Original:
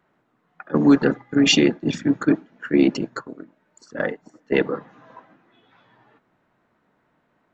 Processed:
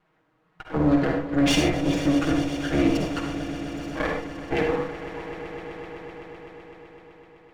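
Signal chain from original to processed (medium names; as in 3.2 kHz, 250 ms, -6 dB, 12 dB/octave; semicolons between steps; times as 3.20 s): comb filter that takes the minimum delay 6.3 ms; treble shelf 5.2 kHz -6.5 dB; peak limiter -14.5 dBFS, peak gain reduction 8.5 dB; echo with a slow build-up 127 ms, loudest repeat 5, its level -16 dB; on a send at -2 dB: reverberation, pre-delay 47 ms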